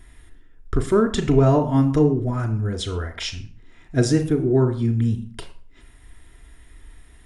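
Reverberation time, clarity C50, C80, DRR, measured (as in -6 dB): 0.45 s, 12.0 dB, 15.5 dB, 3.5 dB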